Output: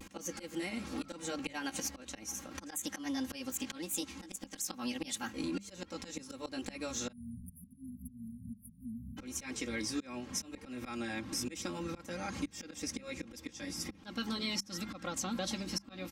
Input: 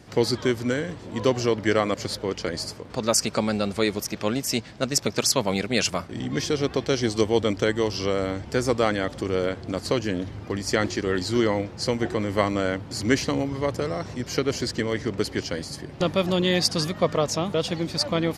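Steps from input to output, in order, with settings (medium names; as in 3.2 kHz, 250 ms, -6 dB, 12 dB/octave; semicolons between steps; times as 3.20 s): pitch bend over the whole clip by +3 st ending unshifted; slow attack 667 ms; peaking EQ 540 Hz -11.5 dB 0.89 oct; compression 5:1, threshold -38 dBFS, peak gain reduction 13 dB; spectral selection erased 8.12–10.46 s, 230–8400 Hz; vibrato 0.69 Hz 48 cents; tape speed +14%; hum notches 50/100/150/200 Hz; comb 3.7 ms, depth 84%; trim +2 dB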